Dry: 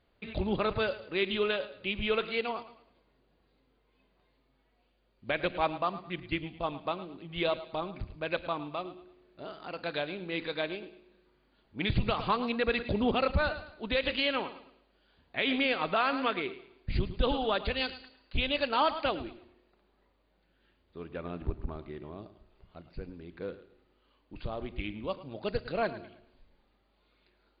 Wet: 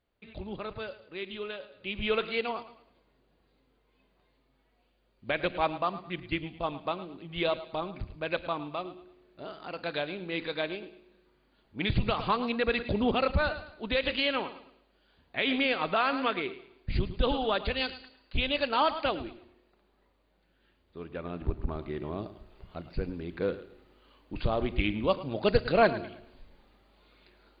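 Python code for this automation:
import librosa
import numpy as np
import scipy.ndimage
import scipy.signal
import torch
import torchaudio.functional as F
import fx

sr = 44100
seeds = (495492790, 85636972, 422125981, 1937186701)

y = fx.gain(x, sr, db=fx.line((1.62, -8.5), (2.07, 1.0), (21.31, 1.0), (22.15, 8.5)))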